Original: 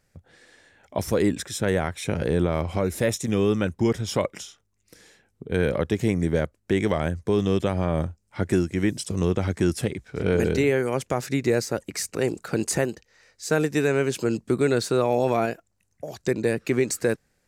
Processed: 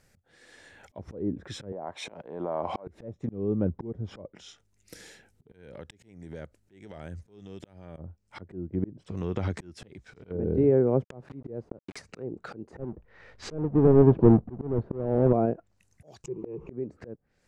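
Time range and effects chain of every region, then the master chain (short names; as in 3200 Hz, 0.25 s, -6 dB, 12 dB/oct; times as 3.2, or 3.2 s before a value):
1.72–2.87 HPF 250 Hz + band shelf 810 Hz +9 dB 1.1 oct + compressor 12:1, threshold -22 dBFS
4.29–7.97 notch 1100 Hz, Q 5.8 + compressor, threshold -36 dBFS
9.06–10.31 compressor 3:1, threshold -30 dBFS + mismatched tape noise reduction encoder only
11.04–12.02 bell 9800 Hz +11.5 dB 0.33 oct + requantised 6-bit, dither none
12.79–15.33 half-waves squared off + LPF 2500 Hz + low shelf 85 Hz +8.5 dB
16.24–16.69 delta modulation 64 kbps, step -34.5 dBFS + ripple EQ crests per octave 0.74, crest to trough 17 dB
whole clip: treble ducked by the level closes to 560 Hz, closed at -21 dBFS; dynamic EQ 2000 Hz, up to -4 dB, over -47 dBFS, Q 1.2; auto swell 0.582 s; gain +4 dB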